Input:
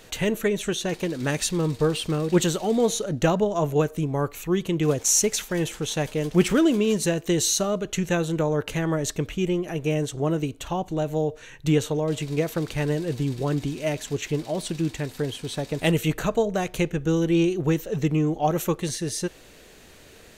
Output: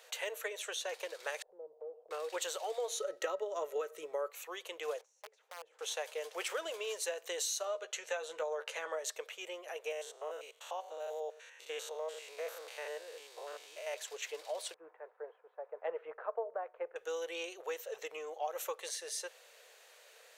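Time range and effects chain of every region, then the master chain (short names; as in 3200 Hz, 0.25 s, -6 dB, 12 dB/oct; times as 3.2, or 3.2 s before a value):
1.42–2.11 Chebyshev low-pass 710 Hz, order 4 + compressor 3:1, threshold -31 dBFS
2.97–4.3 resonant low shelf 460 Hz +6.5 dB, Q 3 + small resonant body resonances 570/1300/1900 Hz, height 15 dB, ringing for 90 ms
5.01–5.79 compressor 5:1, threshold -32 dBFS + band-pass 180 Hz, Q 0.96 + wrapped overs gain 31.5 dB
7.65–8.99 LPF 9200 Hz + doubler 13 ms -7 dB
9.92–13.94 stepped spectrum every 0.1 s + HPF 360 Hz 6 dB/oct
14.74–16.96 LPF 1400 Hz 24 dB/oct + three-band expander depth 100%
whole clip: elliptic high-pass 490 Hz, stop band 50 dB; compressor 5:1, threshold -26 dBFS; gain -7.5 dB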